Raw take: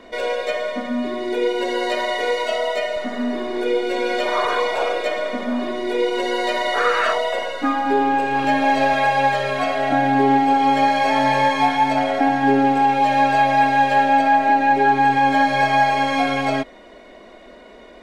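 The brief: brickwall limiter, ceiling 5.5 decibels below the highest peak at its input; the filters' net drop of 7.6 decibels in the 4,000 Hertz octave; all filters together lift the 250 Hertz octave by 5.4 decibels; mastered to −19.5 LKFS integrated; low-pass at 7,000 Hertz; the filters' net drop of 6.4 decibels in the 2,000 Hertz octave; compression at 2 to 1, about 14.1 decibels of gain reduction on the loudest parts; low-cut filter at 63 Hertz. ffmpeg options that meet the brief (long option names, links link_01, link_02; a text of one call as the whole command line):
ffmpeg -i in.wav -af "highpass=63,lowpass=7000,equalizer=frequency=250:width_type=o:gain=6,equalizer=frequency=2000:width_type=o:gain=-7,equalizer=frequency=4000:width_type=o:gain=-7,acompressor=threshold=-37dB:ratio=2,volume=12dB,alimiter=limit=-11.5dB:level=0:latency=1" out.wav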